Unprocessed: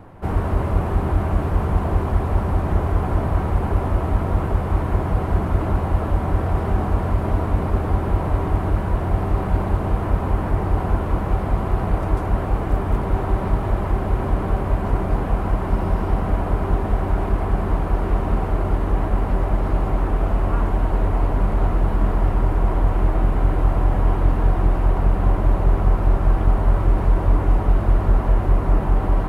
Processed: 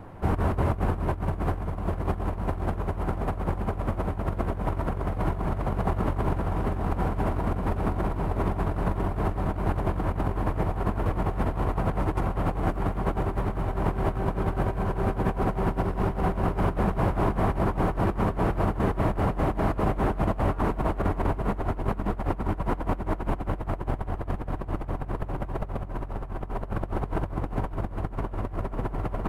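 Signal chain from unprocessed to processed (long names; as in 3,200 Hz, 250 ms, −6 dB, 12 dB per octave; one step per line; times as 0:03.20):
feedback delay with all-pass diffusion 511 ms, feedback 71%, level −3.5 dB
compressor whose output falls as the input rises −21 dBFS, ratio −0.5
level −5 dB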